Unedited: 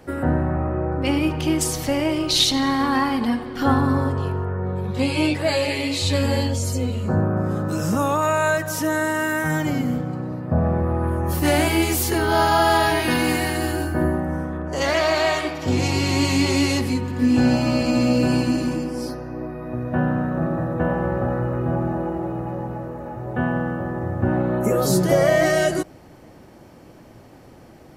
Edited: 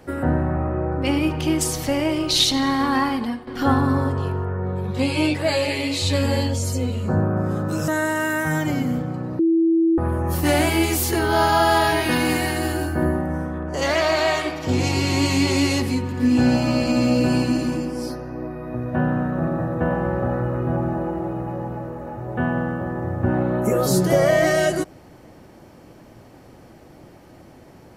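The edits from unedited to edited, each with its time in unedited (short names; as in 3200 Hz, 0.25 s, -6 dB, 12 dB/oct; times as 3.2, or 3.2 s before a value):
3.07–3.47 fade out, to -11.5 dB
7.88–8.87 cut
10.38–10.97 bleep 329 Hz -14 dBFS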